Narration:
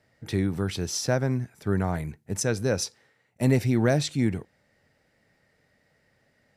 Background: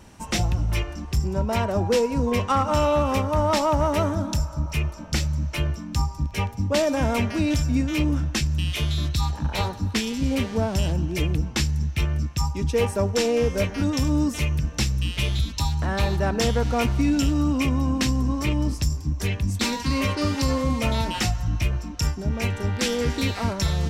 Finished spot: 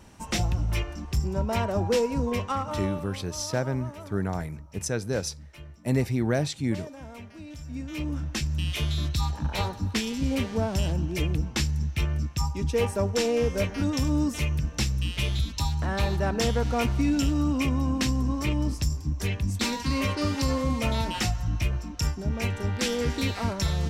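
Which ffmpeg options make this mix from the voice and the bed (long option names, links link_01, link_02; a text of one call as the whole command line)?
ffmpeg -i stem1.wav -i stem2.wav -filter_complex "[0:a]adelay=2450,volume=-3dB[link_01];[1:a]volume=14dB,afade=type=out:start_time=2.11:duration=0.94:silence=0.141254,afade=type=in:start_time=7.55:duration=1.15:silence=0.141254[link_02];[link_01][link_02]amix=inputs=2:normalize=0" out.wav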